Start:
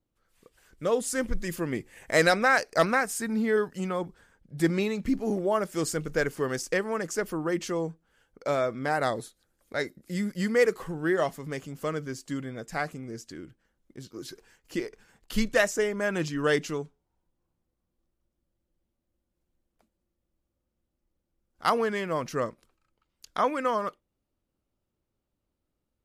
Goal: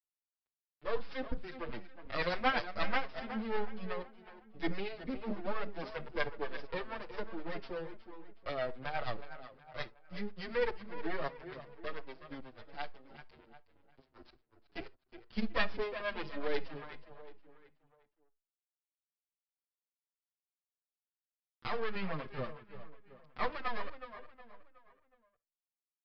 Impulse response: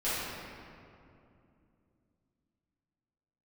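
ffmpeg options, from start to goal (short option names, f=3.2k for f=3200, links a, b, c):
-filter_complex "[0:a]asettb=1/sr,asplit=3[a][b][c];[a]atrim=end=21.954[d];[b]atrim=start=21.95:end=23.37,asetpts=PTS-STARTPTS,afade=t=in:d=0.004:c=qsin,afade=t=out:st=1.416:d=0.004:c=qsin,bass=f=250:g=10,treble=f=4k:g=-4[e];[c]atrim=start=23.366[f];[d][e]acrossfade=d=0.004:c1=hsin:c2=qsin[g];[g][f]acrossfade=d=0.004:c1=qsin:c2=hsin,aeval=exprs='sgn(val(0))*max(abs(val(0))-0.0106,0)':c=same,acrossover=split=470[h][i];[h]aeval=exprs='val(0)*(1-0.7/2+0.7/2*cos(2*PI*8.3*n/s))':c=same[j];[i]aeval=exprs='val(0)*(1-0.7/2-0.7/2*cos(2*PI*8.3*n/s))':c=same[k];[j][k]amix=inputs=2:normalize=0,aeval=exprs='max(val(0),0)':c=same,asplit=2[l][m];[m]adelay=367,lowpass=f=4.1k:p=1,volume=-11.5dB,asplit=2[n][o];[o]adelay=367,lowpass=f=4.1k:p=1,volume=0.43,asplit=2[p][q];[q]adelay=367,lowpass=f=4.1k:p=1,volume=0.43,asplit=2[r][s];[s]adelay=367,lowpass=f=4.1k:p=1,volume=0.43[t];[l][n][p][r][t]amix=inputs=5:normalize=0,asplit=2[u][v];[1:a]atrim=start_sample=2205,atrim=end_sample=3528[w];[v][w]afir=irnorm=-1:irlink=0,volume=-22dB[x];[u][x]amix=inputs=2:normalize=0,aresample=11025,aresample=44100,asplit=2[y][z];[z]adelay=6.5,afreqshift=-1.1[aa];[y][aa]amix=inputs=2:normalize=1,volume=1dB"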